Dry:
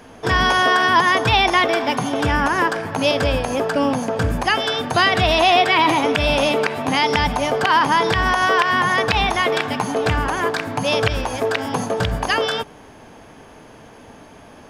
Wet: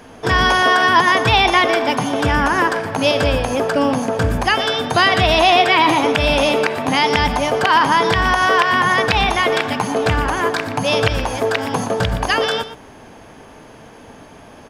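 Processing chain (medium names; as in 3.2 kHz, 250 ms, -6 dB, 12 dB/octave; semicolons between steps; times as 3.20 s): delay 119 ms -12.5 dB; trim +2 dB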